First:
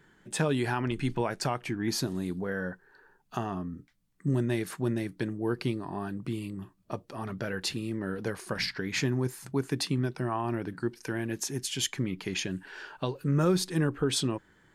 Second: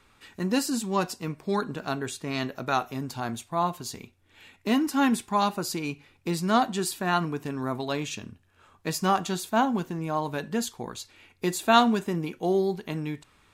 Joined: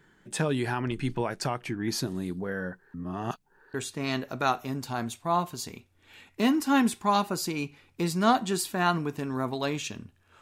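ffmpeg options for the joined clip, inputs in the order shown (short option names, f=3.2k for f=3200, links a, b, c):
-filter_complex "[0:a]apad=whole_dur=10.41,atrim=end=10.41,asplit=2[a][b];[a]atrim=end=2.942[c];[b]atrim=start=2.938:end=3.742,asetpts=PTS-STARTPTS,areverse[d];[1:a]atrim=start=2.008:end=8.68[e];[c][d]acrossfade=d=0.004:c1=hsin:c2=hsin[f];[f][e]acrossfade=d=0.004:c1=hsin:c2=hsin"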